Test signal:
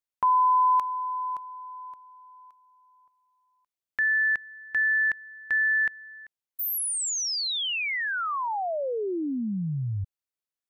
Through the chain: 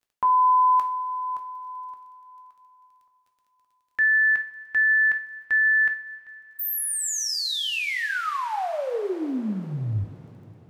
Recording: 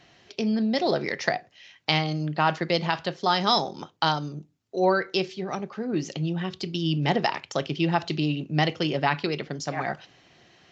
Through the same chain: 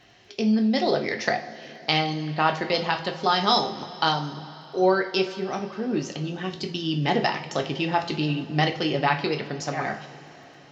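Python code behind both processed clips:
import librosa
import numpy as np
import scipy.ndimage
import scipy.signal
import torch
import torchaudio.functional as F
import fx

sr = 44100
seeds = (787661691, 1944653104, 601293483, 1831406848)

y = fx.dmg_crackle(x, sr, seeds[0], per_s=16.0, level_db=-53.0)
y = fx.rev_double_slope(y, sr, seeds[1], early_s=0.35, late_s=4.4, knee_db=-19, drr_db=4.0)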